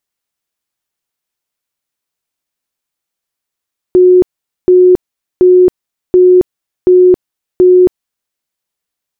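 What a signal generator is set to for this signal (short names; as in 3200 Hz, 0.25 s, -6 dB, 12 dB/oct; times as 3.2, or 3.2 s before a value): tone bursts 364 Hz, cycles 99, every 0.73 s, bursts 6, -2 dBFS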